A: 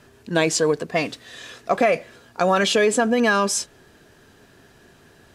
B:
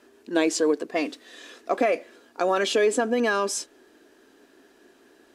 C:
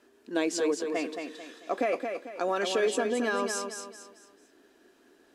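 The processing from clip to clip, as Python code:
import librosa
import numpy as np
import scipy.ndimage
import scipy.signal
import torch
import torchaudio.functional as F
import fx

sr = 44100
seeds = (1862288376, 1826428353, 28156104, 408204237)

y1 = fx.low_shelf_res(x, sr, hz=200.0, db=-13.5, q=3.0)
y1 = y1 * librosa.db_to_amplitude(-6.0)
y2 = fx.echo_feedback(y1, sr, ms=222, feedback_pct=37, wet_db=-6)
y2 = y2 * librosa.db_to_amplitude(-6.0)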